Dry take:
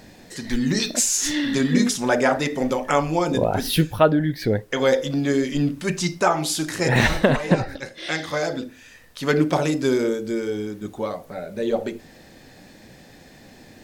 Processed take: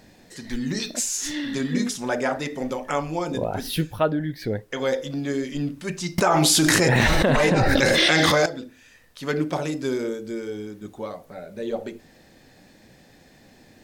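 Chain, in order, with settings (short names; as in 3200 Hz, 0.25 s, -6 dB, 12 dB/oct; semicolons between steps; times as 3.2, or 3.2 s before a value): 6.18–8.46 fast leveller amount 100%; gain -5.5 dB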